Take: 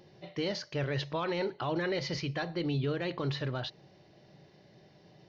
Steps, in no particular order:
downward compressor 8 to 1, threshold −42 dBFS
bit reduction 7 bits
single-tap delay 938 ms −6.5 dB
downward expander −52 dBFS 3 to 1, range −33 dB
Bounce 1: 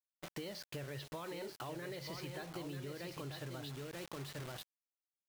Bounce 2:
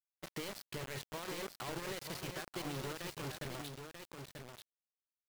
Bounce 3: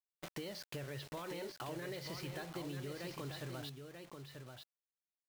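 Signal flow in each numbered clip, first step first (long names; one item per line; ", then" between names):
single-tap delay, then bit reduction, then downward compressor, then downward expander
downward compressor, then bit reduction, then downward expander, then single-tap delay
bit reduction, then downward expander, then downward compressor, then single-tap delay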